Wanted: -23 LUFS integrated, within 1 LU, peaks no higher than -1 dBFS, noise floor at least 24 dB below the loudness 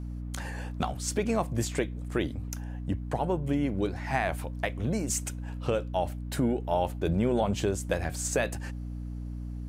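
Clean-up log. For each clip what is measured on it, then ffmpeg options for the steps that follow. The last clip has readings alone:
hum 60 Hz; harmonics up to 300 Hz; hum level -34 dBFS; loudness -31.0 LUFS; peak -14.0 dBFS; loudness target -23.0 LUFS
-> -af "bandreject=f=60:t=h:w=6,bandreject=f=120:t=h:w=6,bandreject=f=180:t=h:w=6,bandreject=f=240:t=h:w=6,bandreject=f=300:t=h:w=6"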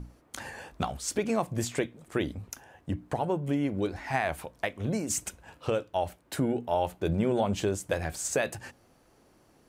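hum none; loudness -31.0 LUFS; peak -14.5 dBFS; loudness target -23.0 LUFS
-> -af "volume=8dB"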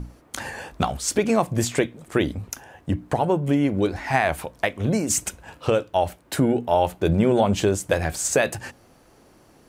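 loudness -23.0 LUFS; peak -6.5 dBFS; noise floor -55 dBFS

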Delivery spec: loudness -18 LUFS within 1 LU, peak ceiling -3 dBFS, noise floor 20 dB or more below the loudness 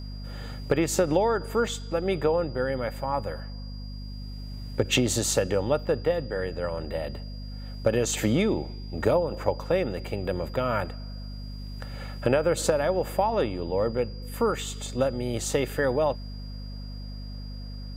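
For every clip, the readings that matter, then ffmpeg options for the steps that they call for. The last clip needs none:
hum 50 Hz; harmonics up to 250 Hz; hum level -34 dBFS; steady tone 4800 Hz; tone level -48 dBFS; loudness -27.0 LUFS; peak -9.5 dBFS; loudness target -18.0 LUFS
-> -af "bandreject=f=50:t=h:w=4,bandreject=f=100:t=h:w=4,bandreject=f=150:t=h:w=4,bandreject=f=200:t=h:w=4,bandreject=f=250:t=h:w=4"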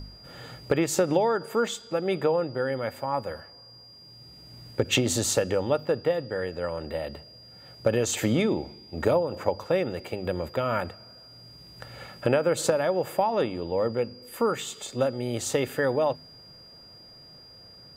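hum none; steady tone 4800 Hz; tone level -48 dBFS
-> -af "bandreject=f=4.8k:w=30"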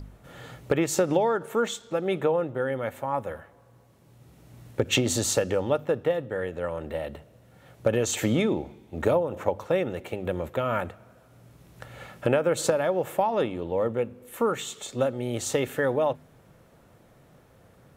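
steady tone none; loudness -27.0 LUFS; peak -10.0 dBFS; loudness target -18.0 LUFS
-> -af "volume=9dB,alimiter=limit=-3dB:level=0:latency=1"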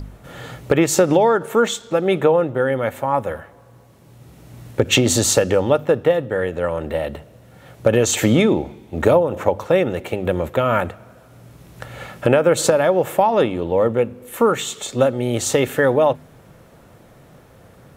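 loudness -18.5 LUFS; peak -3.0 dBFS; noise floor -48 dBFS

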